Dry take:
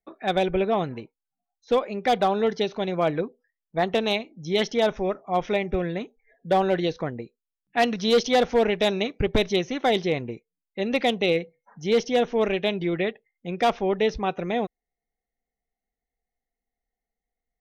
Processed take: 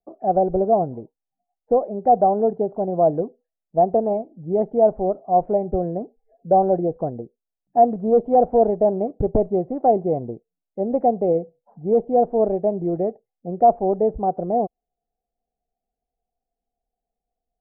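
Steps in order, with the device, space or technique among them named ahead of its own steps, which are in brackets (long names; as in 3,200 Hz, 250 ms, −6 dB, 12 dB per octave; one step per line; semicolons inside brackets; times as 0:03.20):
under water (low-pass filter 730 Hz 24 dB per octave; parametric band 710 Hz +9.5 dB 0.51 octaves)
level +2 dB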